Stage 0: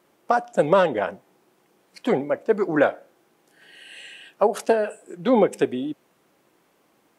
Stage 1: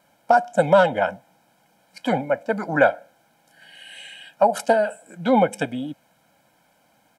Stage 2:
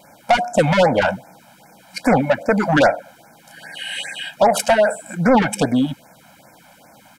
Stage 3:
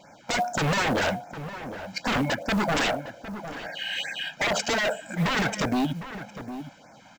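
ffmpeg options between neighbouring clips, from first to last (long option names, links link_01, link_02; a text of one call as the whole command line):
ffmpeg -i in.wav -af "aecho=1:1:1.3:0.98" out.wav
ffmpeg -i in.wav -filter_complex "[0:a]asplit=2[link_01][link_02];[link_02]acompressor=threshold=-24dB:ratio=6,volume=2dB[link_03];[link_01][link_03]amix=inputs=2:normalize=0,asoftclip=type=tanh:threshold=-15.5dB,afftfilt=real='re*(1-between(b*sr/1024,350*pow(3600/350,0.5+0.5*sin(2*PI*2.5*pts/sr))/1.41,350*pow(3600/350,0.5+0.5*sin(2*PI*2.5*pts/sr))*1.41))':imag='im*(1-between(b*sr/1024,350*pow(3600/350,0.5+0.5*sin(2*PI*2.5*pts/sr))/1.41,350*pow(3600/350,0.5+0.5*sin(2*PI*2.5*pts/sr))*1.41))':win_size=1024:overlap=0.75,volume=7dB" out.wav
ffmpeg -i in.wav -filter_complex "[0:a]aresample=16000,aeval=exprs='0.158*(abs(mod(val(0)/0.158+3,4)-2)-1)':channel_layout=same,aresample=44100,asplit=2[link_01][link_02];[link_02]adelay=758,volume=-11dB,highshelf=frequency=4000:gain=-17.1[link_03];[link_01][link_03]amix=inputs=2:normalize=0,acrusher=bits=7:mode=log:mix=0:aa=0.000001,volume=-3dB" out.wav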